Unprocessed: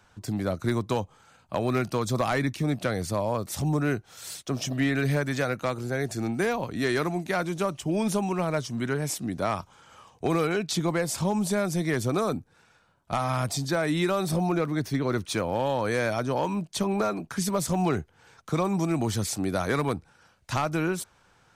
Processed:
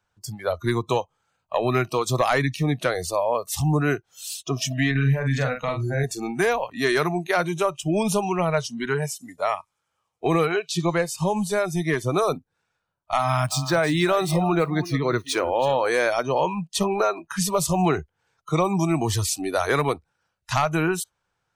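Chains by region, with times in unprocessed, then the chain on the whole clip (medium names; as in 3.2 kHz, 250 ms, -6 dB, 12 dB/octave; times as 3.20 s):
4.91–6.04 s: tone controls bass +7 dB, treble -3 dB + compression 4:1, threshold -25 dBFS + doubling 44 ms -4.5 dB
9.06–12.17 s: treble shelf 5.8 kHz -3 dB + feedback echo behind a high-pass 94 ms, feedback 84%, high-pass 2.7 kHz, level -18 dB + upward expansion, over -43 dBFS
13.19–15.88 s: median filter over 3 samples + delay 325 ms -13 dB
whole clip: peaking EQ 250 Hz -5.5 dB 0.59 oct; spectral noise reduction 21 dB; trim +6 dB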